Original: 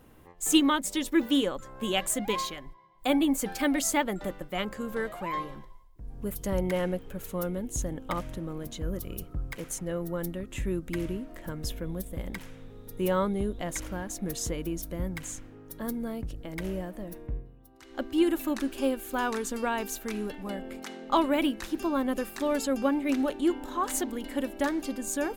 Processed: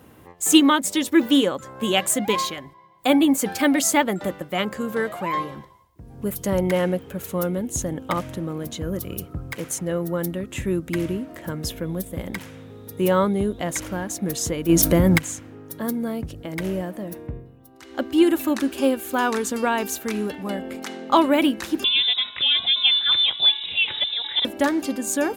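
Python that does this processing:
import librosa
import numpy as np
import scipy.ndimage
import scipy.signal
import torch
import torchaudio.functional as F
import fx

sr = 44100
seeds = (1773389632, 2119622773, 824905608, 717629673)

y = fx.env_flatten(x, sr, amount_pct=70, at=(14.68, 15.17), fade=0.02)
y = fx.freq_invert(y, sr, carrier_hz=3800, at=(21.84, 24.45))
y = scipy.signal.sosfilt(scipy.signal.butter(4, 70.0, 'highpass', fs=sr, output='sos'), y)
y = y * librosa.db_to_amplitude(7.5)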